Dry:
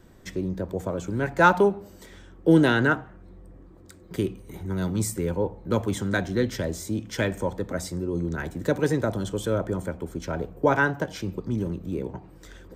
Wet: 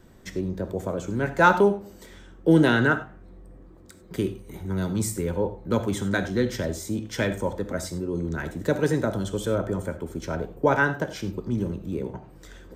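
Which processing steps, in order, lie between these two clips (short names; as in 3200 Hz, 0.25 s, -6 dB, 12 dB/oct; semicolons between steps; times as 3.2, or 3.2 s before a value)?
non-linear reverb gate 0.12 s flat, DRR 10.5 dB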